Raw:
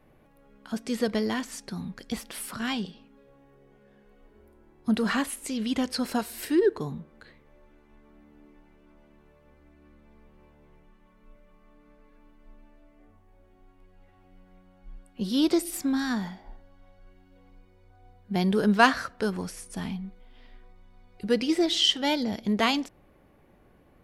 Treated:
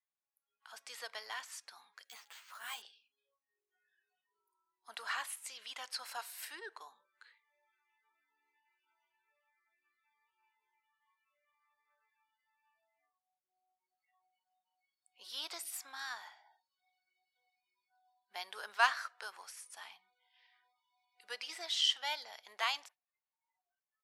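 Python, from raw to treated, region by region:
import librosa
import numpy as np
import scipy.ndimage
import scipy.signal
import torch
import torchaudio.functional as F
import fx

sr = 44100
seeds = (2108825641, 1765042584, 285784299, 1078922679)

y = fx.chain(x, sr, fx.low_shelf(hz=360.0, db=5.0),
    fx.resample_bad(factor=4, down='filtered', up='hold'),
    fx.ensemble(), at=(2.04, 2.82))
y = scipy.signal.sosfilt(scipy.signal.butter(4, 820.0, 'highpass', fs=sr, output='sos'), y)
y = fx.noise_reduce_blind(y, sr, reduce_db=28)
y = y * librosa.db_to_amplitude(-8.0)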